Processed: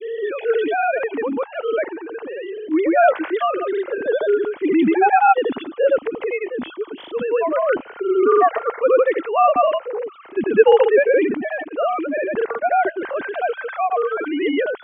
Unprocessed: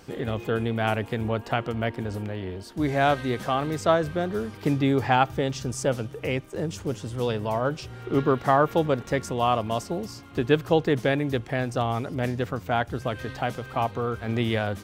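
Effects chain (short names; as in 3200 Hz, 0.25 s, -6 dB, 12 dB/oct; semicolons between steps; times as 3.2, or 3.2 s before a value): sine-wave speech; grains 0.1 s, grains 20/s, spray 0.1 s, pitch spread up and down by 0 st; transient shaper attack -3 dB, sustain +5 dB; gain +8.5 dB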